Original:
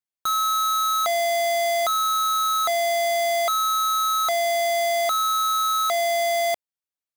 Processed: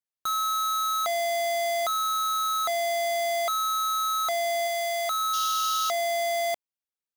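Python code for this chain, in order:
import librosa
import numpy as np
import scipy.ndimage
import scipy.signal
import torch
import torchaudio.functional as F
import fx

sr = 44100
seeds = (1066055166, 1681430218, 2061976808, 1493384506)

y = fx.peak_eq(x, sr, hz=280.0, db=-12.0, octaves=1.2, at=(4.67, 5.21))
y = fx.spec_paint(y, sr, seeds[0], shape='noise', start_s=5.33, length_s=0.58, low_hz=2700.0, high_hz=7000.0, level_db=-31.0)
y = y * librosa.db_to_amplitude(-4.5)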